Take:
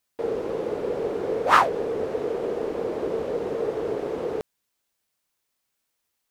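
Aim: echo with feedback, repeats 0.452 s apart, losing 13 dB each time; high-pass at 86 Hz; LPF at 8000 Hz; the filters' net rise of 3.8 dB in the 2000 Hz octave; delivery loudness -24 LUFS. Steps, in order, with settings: HPF 86 Hz; LPF 8000 Hz; bell 2000 Hz +5 dB; feedback echo 0.452 s, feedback 22%, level -13 dB; gain +1 dB

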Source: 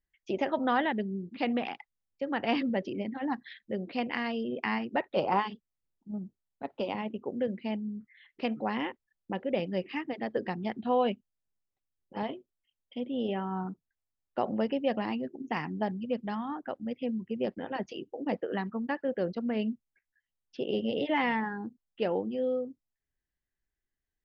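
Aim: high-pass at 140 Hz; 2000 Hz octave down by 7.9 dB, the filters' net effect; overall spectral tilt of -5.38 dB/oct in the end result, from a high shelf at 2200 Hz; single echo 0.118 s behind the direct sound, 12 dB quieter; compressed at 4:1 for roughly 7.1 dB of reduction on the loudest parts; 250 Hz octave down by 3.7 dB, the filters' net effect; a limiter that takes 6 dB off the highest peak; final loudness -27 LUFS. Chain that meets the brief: HPF 140 Hz; bell 250 Hz -3.5 dB; bell 2000 Hz -6.5 dB; high shelf 2200 Hz -5.5 dB; compressor 4:1, threshold -32 dBFS; limiter -27 dBFS; echo 0.118 s -12 dB; gain +12.5 dB

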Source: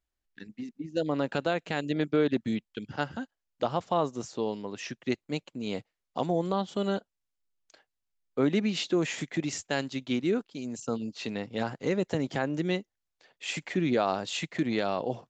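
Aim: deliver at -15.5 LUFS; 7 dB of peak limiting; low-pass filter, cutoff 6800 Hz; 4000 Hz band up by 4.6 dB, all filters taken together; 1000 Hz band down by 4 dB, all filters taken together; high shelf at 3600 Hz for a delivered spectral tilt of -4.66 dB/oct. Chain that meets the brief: LPF 6800 Hz; bell 1000 Hz -6.5 dB; high shelf 3600 Hz +4 dB; bell 4000 Hz +4 dB; gain +18 dB; limiter -2.5 dBFS

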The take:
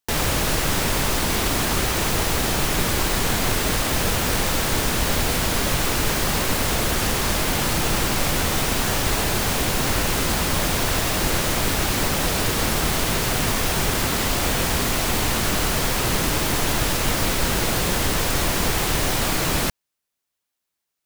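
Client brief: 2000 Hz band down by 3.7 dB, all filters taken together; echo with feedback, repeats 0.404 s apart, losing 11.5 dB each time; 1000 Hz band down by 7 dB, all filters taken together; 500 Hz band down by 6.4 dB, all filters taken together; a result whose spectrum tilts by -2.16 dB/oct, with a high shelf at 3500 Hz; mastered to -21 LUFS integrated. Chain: bell 500 Hz -6.5 dB; bell 1000 Hz -6.5 dB; bell 2000 Hz -3.5 dB; high shelf 3500 Hz +3.5 dB; feedback echo 0.404 s, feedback 27%, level -11.5 dB; gain -1 dB

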